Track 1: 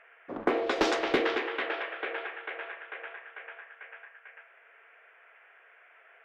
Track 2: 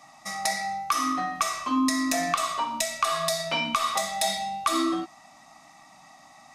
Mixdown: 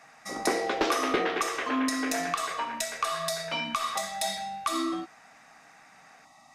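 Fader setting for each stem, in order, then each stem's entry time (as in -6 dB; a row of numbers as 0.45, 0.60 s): -1.0, -4.5 dB; 0.00, 0.00 s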